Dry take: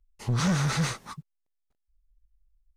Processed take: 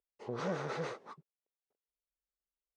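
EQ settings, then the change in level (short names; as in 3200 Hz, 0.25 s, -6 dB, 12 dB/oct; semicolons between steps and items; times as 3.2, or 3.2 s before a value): band-pass 450 Hz, Q 2.6; air absorption 68 m; tilt +3 dB/oct; +6.5 dB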